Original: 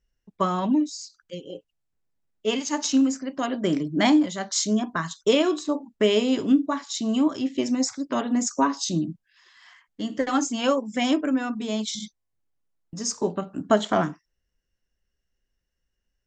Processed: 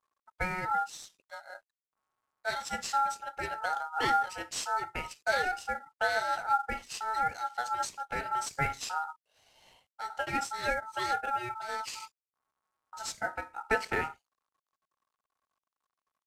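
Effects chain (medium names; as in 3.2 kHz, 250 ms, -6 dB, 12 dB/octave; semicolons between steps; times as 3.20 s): CVSD coder 64 kbps; ring modulator 1.1 kHz; trim -6 dB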